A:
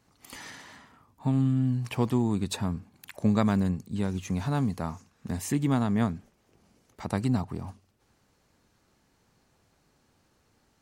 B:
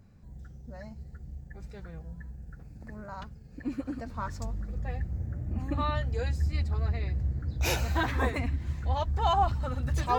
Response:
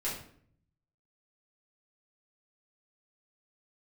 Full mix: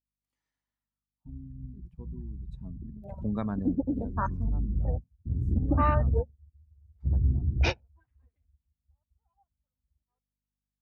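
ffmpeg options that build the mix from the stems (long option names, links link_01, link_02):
-filter_complex "[0:a]aeval=exprs='val(0)+0.00501*(sin(2*PI*50*n/s)+sin(2*PI*2*50*n/s)/2+sin(2*PI*3*50*n/s)/3+sin(2*PI*4*50*n/s)/4+sin(2*PI*5*50*n/s)/5)':channel_layout=same,volume=-8.5dB,afade=type=in:start_time=2.49:duration=0.43:silence=0.223872,afade=type=out:start_time=3.73:duration=0.79:silence=0.375837,asplit=3[link_01][link_02][link_03];[link_02]volume=-20dB[link_04];[1:a]afwtdn=0.0178,dynaudnorm=framelen=310:gausssize=13:maxgain=11dB,volume=-5dB[link_05];[link_03]apad=whole_len=449344[link_06];[link_05][link_06]sidechaingate=range=-33dB:threshold=-54dB:ratio=16:detection=peak[link_07];[2:a]atrim=start_sample=2205[link_08];[link_04][link_08]afir=irnorm=-1:irlink=0[link_09];[link_01][link_07][link_09]amix=inputs=3:normalize=0,afftdn=noise_reduction=26:noise_floor=-40"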